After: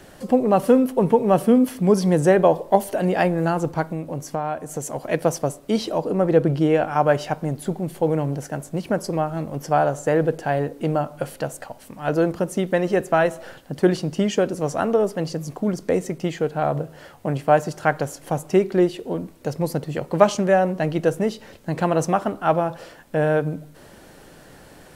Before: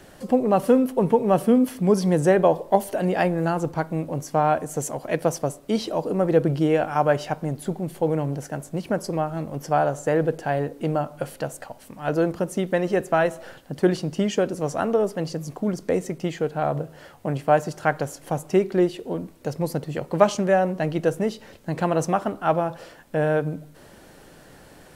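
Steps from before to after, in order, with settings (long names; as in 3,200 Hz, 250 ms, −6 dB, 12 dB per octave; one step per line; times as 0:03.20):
0:03.91–0:04.95: downward compressor 2.5 to 1, threshold −28 dBFS, peak gain reduction 8.5 dB
0:05.98–0:07.07: high-shelf EQ 5,200 Hz −4.5 dB
level +2 dB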